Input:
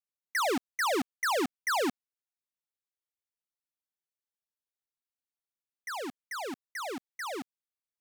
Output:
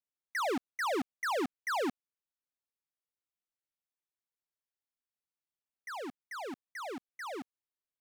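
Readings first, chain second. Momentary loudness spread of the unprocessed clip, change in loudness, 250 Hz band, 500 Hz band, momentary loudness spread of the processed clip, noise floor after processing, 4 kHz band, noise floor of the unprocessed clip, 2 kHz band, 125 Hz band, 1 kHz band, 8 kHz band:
10 LU, −4.0 dB, −3.0 dB, −3.0 dB, 10 LU, below −85 dBFS, −7.0 dB, below −85 dBFS, −4.5 dB, −3.0 dB, −3.5 dB, −9.0 dB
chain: high-shelf EQ 3,400 Hz −7.5 dB
level −3 dB

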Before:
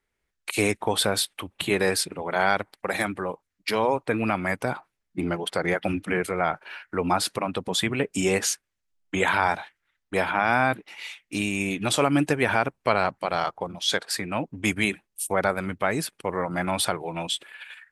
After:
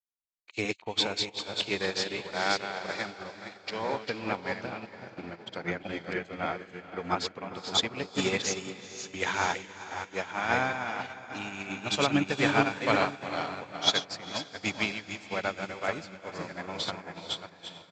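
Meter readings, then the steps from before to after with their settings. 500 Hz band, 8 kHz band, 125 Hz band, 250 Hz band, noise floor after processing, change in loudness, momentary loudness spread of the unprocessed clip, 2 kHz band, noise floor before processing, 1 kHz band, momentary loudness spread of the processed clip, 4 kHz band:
−7.0 dB, −8.5 dB, −7.5 dB, −6.5 dB, −55 dBFS, −5.5 dB, 10 LU, −5.0 dB, −80 dBFS, −6.5 dB, 13 LU, −1.5 dB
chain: delay that plays each chunk backwards 324 ms, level −3.5 dB
dynamic equaliser 4,000 Hz, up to +5 dB, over −36 dBFS, Q 0.73
on a send: feedback delay with all-pass diffusion 457 ms, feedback 61%, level −6 dB
on the sum: downsampling to 16,000 Hz
expander for the loud parts 2.5 to 1, over −38 dBFS
level −3 dB

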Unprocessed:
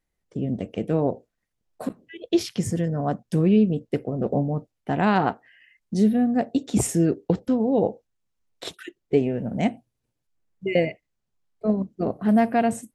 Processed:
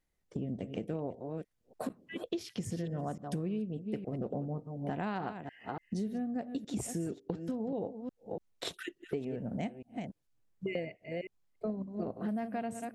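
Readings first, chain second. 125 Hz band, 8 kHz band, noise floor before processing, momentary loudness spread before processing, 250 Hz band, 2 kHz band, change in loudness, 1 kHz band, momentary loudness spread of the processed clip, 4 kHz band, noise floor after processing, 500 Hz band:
−13.0 dB, −13.0 dB, −80 dBFS, 15 LU, −14.0 dB, −12.5 dB, −15.0 dB, −14.0 dB, 8 LU, −9.0 dB, −77 dBFS, −13.5 dB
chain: delay that plays each chunk backwards 289 ms, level −12 dB
downward compressor 6 to 1, threshold −32 dBFS, peak gain reduction 17 dB
level −2 dB

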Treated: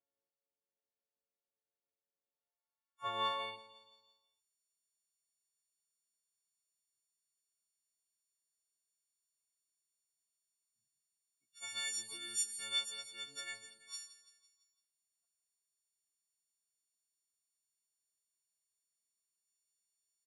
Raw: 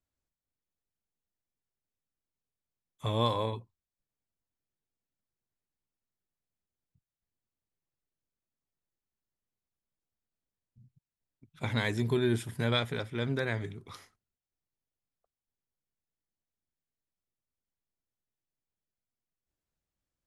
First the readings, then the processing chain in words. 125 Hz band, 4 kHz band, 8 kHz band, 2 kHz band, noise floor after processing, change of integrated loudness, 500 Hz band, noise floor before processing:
below −30 dB, −1.5 dB, +12.5 dB, −9.5 dB, below −85 dBFS, −8.0 dB, −18.5 dB, below −85 dBFS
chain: every partial snapped to a pitch grid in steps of 4 semitones
on a send: repeating echo 168 ms, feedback 51%, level −14 dB
on the sum: band-pass filter sweep 510 Hz → 6,800 Hz, 0:02.24–0:04.45
level +2.5 dB

